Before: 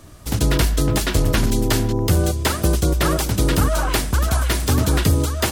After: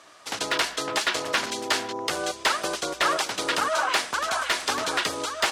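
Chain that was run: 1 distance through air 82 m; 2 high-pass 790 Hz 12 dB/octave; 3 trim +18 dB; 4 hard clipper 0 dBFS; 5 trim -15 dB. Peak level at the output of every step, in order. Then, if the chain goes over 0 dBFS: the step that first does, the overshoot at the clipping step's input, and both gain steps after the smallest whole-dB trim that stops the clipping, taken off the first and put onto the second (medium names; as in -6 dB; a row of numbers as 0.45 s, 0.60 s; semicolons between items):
-5.0 dBFS, -10.0 dBFS, +8.0 dBFS, 0.0 dBFS, -15.0 dBFS; step 3, 8.0 dB; step 3 +10 dB, step 5 -7 dB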